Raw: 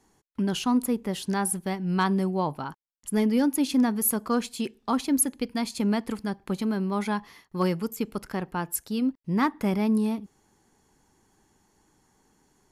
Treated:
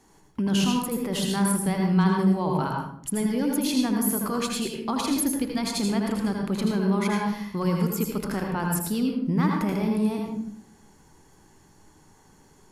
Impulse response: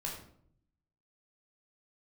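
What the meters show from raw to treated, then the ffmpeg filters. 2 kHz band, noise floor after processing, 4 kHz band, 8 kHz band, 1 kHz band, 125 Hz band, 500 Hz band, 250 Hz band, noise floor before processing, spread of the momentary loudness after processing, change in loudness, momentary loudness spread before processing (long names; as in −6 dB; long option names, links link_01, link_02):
+1.5 dB, −56 dBFS, +4.5 dB, 0.0 dB, +1.0 dB, +5.5 dB, +1.5 dB, +1.5 dB, −67 dBFS, 6 LU, +1.5 dB, 10 LU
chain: -filter_complex "[0:a]alimiter=level_in=1.5dB:limit=-24dB:level=0:latency=1:release=34,volume=-1.5dB,asplit=2[link_01][link_02];[1:a]atrim=start_sample=2205,adelay=80[link_03];[link_02][link_03]afir=irnorm=-1:irlink=0,volume=-1.5dB[link_04];[link_01][link_04]amix=inputs=2:normalize=0,volume=5.5dB"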